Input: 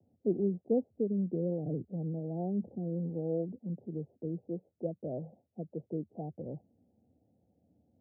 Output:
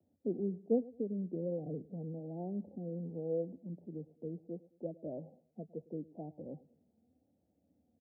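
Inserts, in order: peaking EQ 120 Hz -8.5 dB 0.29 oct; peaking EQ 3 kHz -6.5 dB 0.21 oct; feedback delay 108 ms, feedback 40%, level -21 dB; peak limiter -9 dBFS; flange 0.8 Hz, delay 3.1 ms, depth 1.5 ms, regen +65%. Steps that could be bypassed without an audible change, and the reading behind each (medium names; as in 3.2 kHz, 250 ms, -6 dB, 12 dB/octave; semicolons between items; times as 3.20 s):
peaking EQ 3 kHz: input has nothing above 760 Hz; peak limiter -9 dBFS: peak at its input -19.0 dBFS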